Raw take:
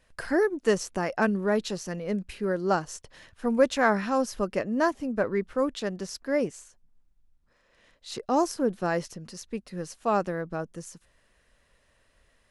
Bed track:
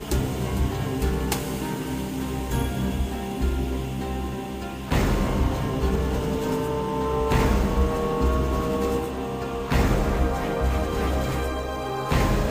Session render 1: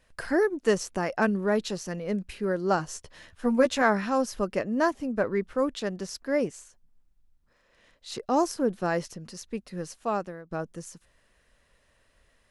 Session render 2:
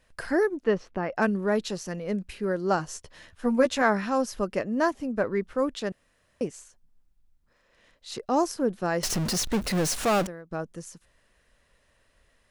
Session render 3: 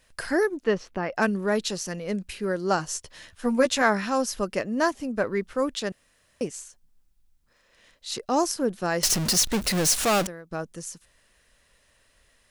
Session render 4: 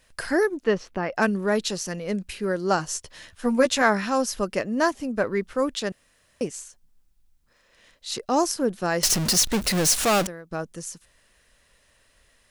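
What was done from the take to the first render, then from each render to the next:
2.78–3.82 doubler 12 ms -5 dB; 9.89–10.51 fade out, to -18.5 dB
0.64–1.16 air absorption 310 m; 5.92–6.41 room tone; 9.03–10.27 power-law curve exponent 0.35
high shelf 2500 Hz +8.5 dB
gain +1.5 dB

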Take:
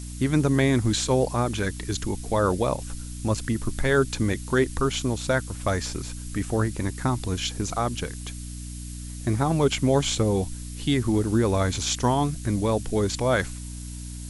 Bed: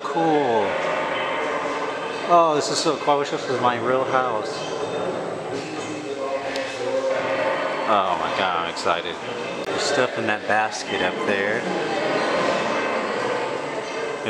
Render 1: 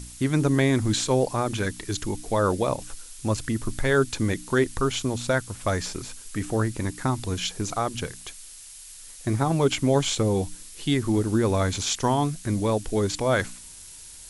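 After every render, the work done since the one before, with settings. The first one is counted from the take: de-hum 60 Hz, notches 5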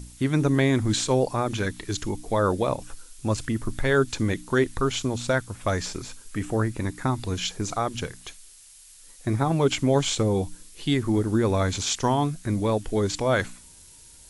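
noise print and reduce 6 dB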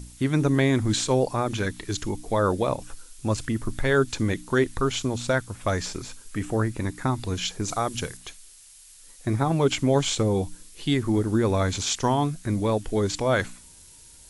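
7.68–8.17 high shelf 6600 Hz +9 dB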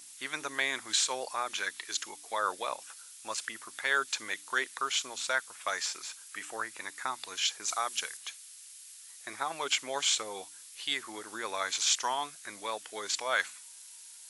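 HPF 1200 Hz 12 dB/oct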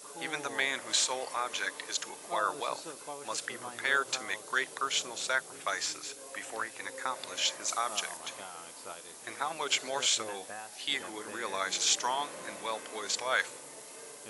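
add bed -24 dB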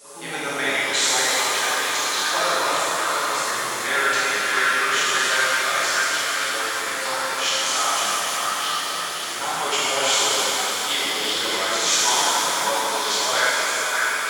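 delay with a stepping band-pass 0.593 s, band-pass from 1400 Hz, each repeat 1.4 oct, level -1 dB; shimmer reverb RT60 3.9 s, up +7 st, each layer -8 dB, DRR -10.5 dB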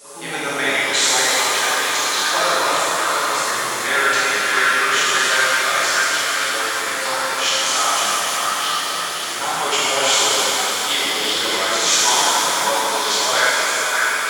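gain +3.5 dB

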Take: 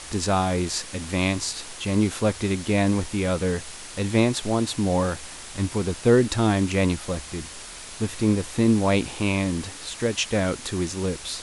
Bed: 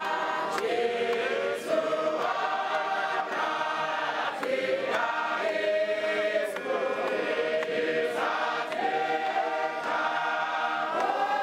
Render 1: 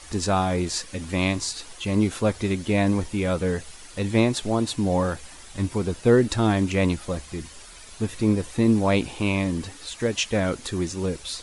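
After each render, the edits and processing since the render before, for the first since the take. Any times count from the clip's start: denoiser 9 dB, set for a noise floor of -40 dBFS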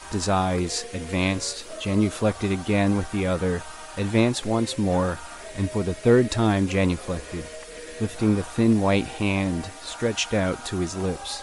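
add bed -12.5 dB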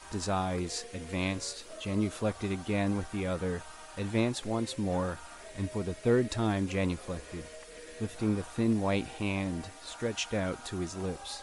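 gain -8.5 dB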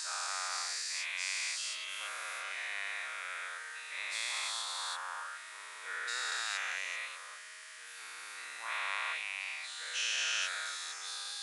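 spectral dilation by 0.48 s; ladder high-pass 1200 Hz, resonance 35%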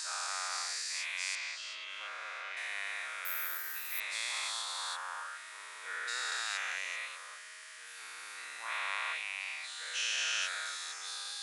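1.35–2.57 air absorption 130 m; 3.25–4 careless resampling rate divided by 3×, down none, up zero stuff

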